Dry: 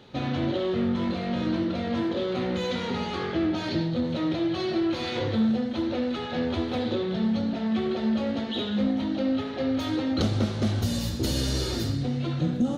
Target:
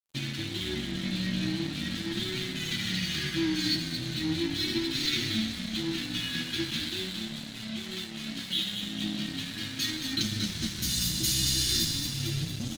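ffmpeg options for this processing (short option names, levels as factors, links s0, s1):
-filter_complex "[0:a]asuperstop=centerf=700:order=8:qfactor=0.51,aecho=1:1:5.9:0.97,acompressor=threshold=0.0447:ratio=6,asettb=1/sr,asplit=3[s0][s1][s2];[s0]atrim=end=6.794[s3];[s1]atrim=start=6.79:end=8.83,asetpts=PTS-STARTPTS,afade=t=in:d=0.004:c=qsin,afade=t=out:st=2.036:d=0.004:c=qsin,lowshelf=f=230:g=-10[s4];[s2]atrim=start=8.826[s5];[s3][s4]acrossfade=d=0.004:c1=hsin:c2=qsin[s6];[s6][s5]acrossfade=d=0.004:c1=qsin:c2=hsin,asplit=9[s7][s8][s9][s10][s11][s12][s13][s14][s15];[s8]adelay=227,afreqshift=-35,volume=0.501[s16];[s9]adelay=454,afreqshift=-70,volume=0.295[s17];[s10]adelay=681,afreqshift=-105,volume=0.174[s18];[s11]adelay=908,afreqshift=-140,volume=0.104[s19];[s12]adelay=1135,afreqshift=-175,volume=0.061[s20];[s13]adelay=1362,afreqshift=-210,volume=0.0359[s21];[s14]adelay=1589,afreqshift=-245,volume=0.0211[s22];[s15]adelay=1816,afreqshift=-280,volume=0.0124[s23];[s7][s16][s17][s18][s19][s20][s21][s22][s23]amix=inputs=9:normalize=0,flanger=delay=7.8:depth=8.6:regen=19:speed=0.4:shape=sinusoidal,bass=f=250:g=-6,treble=f=4000:g=10,aeval=exprs='sgn(val(0))*max(abs(val(0))-0.00531,0)':c=same,volume=2"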